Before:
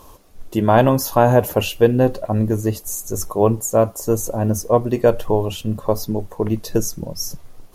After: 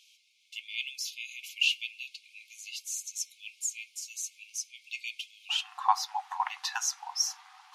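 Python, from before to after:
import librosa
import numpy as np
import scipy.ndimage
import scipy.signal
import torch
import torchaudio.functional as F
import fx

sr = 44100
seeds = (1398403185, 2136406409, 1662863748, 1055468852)

y = scipy.signal.sosfilt(scipy.signal.butter(2, 4000.0, 'lowpass', fs=sr, output='sos'), x)
y = fx.rider(y, sr, range_db=3, speed_s=2.0)
y = fx.brickwall_highpass(y, sr, low_hz=fx.steps((0.0, 2100.0), (5.49, 730.0)))
y = F.gain(torch.from_numpy(y), 3.5).numpy()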